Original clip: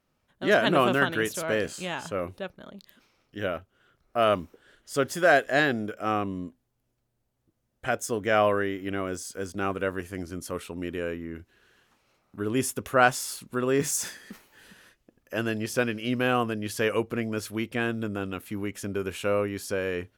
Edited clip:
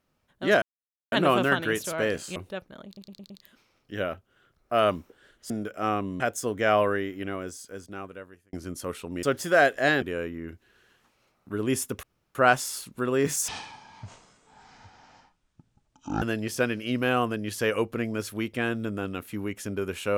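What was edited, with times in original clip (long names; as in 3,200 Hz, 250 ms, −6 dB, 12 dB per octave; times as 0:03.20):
0:00.62: splice in silence 0.50 s
0:01.86–0:02.24: remove
0:02.74: stutter 0.11 s, 5 plays
0:04.94–0:05.73: move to 0:10.89
0:06.43–0:07.86: remove
0:08.57–0:10.19: fade out
0:12.90: splice in room tone 0.32 s
0:14.03–0:15.40: play speed 50%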